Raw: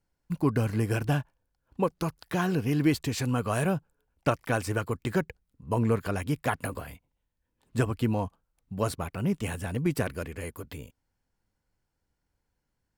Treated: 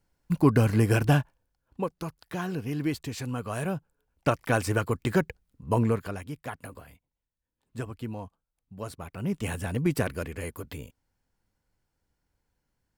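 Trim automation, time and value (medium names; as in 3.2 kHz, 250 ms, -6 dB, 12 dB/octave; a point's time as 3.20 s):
1.16 s +5 dB
1.93 s -5 dB
3.50 s -5 dB
4.57 s +3 dB
5.76 s +3 dB
6.31 s -9 dB
8.88 s -9 dB
9.51 s +1.5 dB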